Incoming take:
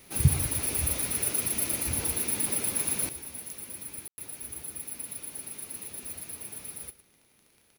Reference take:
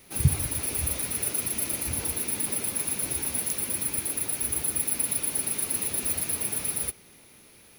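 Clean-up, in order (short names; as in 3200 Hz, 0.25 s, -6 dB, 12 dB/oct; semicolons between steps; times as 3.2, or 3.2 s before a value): de-click; room tone fill 4.08–4.18; inverse comb 0.108 s -17 dB; gain correction +11.5 dB, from 3.09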